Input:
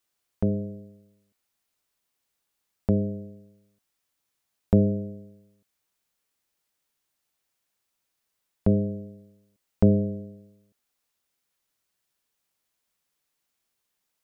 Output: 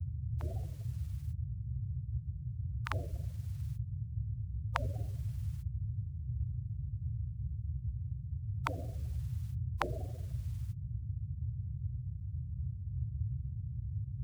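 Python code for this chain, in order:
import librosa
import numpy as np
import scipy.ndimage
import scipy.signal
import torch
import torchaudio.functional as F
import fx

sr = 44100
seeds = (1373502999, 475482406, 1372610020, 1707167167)

y = fx.granulator(x, sr, seeds[0], grain_ms=100.0, per_s=20.0, spray_ms=32.0, spread_st=3)
y = fx.spec_gate(y, sr, threshold_db=-30, keep='weak')
y = fx.dmg_noise_band(y, sr, seeds[1], low_hz=57.0, high_hz=130.0, level_db=-55.0)
y = y * librosa.db_to_amplitude(17.0)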